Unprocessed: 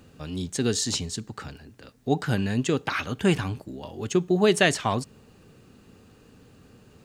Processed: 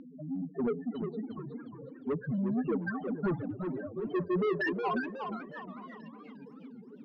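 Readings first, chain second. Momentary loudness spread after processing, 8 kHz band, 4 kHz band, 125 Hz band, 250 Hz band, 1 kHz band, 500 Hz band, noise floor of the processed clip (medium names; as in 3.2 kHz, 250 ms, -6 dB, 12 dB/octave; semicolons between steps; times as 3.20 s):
18 LU, under -40 dB, -23.5 dB, -10.0 dB, -5.5 dB, -6.5 dB, -7.0 dB, -51 dBFS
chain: local Wiener filter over 41 samples; high-pass 220 Hz 12 dB/octave; treble shelf 6.3 kHz +5.5 dB; in parallel at -2 dB: upward compressor, threshold -30 dBFS; on the sum: LFO low-pass saw up 1.7 Hz 720–2700 Hz; loudest bins only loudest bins 2; saturation -26.5 dBFS, distortion -5 dB; distance through air 250 m; on a send: repeats whose band climbs or falls 463 ms, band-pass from 510 Hz, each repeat 1.4 oct, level -11 dB; on the sum: modulated delay 361 ms, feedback 41%, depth 207 cents, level -6.5 dB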